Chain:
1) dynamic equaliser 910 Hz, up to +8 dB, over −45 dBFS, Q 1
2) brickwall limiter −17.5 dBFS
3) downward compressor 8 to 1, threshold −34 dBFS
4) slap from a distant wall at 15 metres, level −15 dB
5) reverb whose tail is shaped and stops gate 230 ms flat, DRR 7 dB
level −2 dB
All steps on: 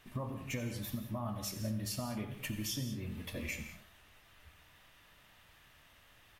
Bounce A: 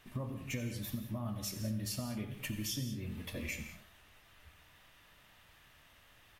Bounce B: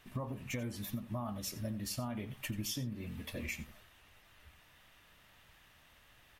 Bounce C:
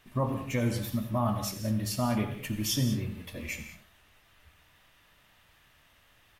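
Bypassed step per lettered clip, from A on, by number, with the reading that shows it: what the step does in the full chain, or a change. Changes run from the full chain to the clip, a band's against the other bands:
1, 1 kHz band −5.0 dB
5, echo-to-direct ratio −6.0 dB to −15.5 dB
3, average gain reduction 5.0 dB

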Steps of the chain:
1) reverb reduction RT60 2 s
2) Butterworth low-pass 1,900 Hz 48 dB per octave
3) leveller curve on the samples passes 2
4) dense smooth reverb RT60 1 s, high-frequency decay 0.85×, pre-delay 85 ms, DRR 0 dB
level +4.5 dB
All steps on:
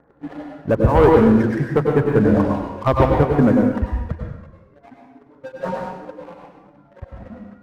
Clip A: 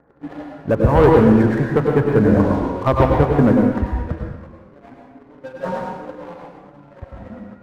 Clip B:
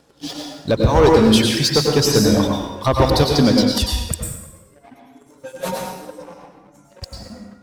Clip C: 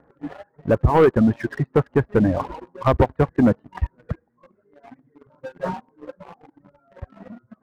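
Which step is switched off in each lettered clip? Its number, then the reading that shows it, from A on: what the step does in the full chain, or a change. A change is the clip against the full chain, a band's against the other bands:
1, change in integrated loudness +1.0 LU
2, 2 kHz band +2.0 dB
4, change in crest factor −2.5 dB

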